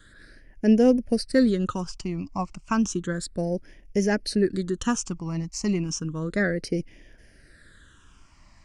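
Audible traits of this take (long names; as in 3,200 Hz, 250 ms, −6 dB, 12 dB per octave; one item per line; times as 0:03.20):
phaser sweep stages 8, 0.32 Hz, lowest notch 460–1,200 Hz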